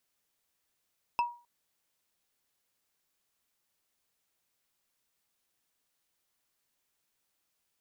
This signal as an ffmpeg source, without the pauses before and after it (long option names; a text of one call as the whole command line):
ffmpeg -f lavfi -i "aevalsrc='0.0794*pow(10,-3*t/0.35)*sin(2*PI*956*t)+0.0316*pow(10,-3*t/0.104)*sin(2*PI*2635.7*t)+0.0126*pow(10,-3*t/0.046)*sin(2*PI*5166.2*t)+0.00501*pow(10,-3*t/0.025)*sin(2*PI*8539.9*t)+0.002*pow(10,-3*t/0.016)*sin(2*PI*12753*t)':duration=0.26:sample_rate=44100" out.wav